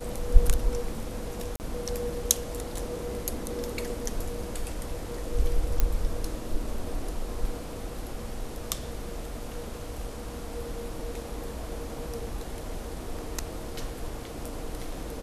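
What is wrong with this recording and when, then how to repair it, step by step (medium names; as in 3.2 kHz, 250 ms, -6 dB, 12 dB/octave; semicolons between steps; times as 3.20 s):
1.56–1.60 s: dropout 39 ms
5.80 s: pop -9 dBFS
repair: de-click; interpolate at 1.56 s, 39 ms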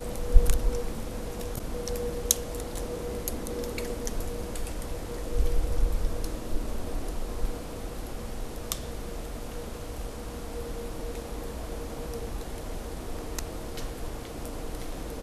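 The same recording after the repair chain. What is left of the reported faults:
nothing left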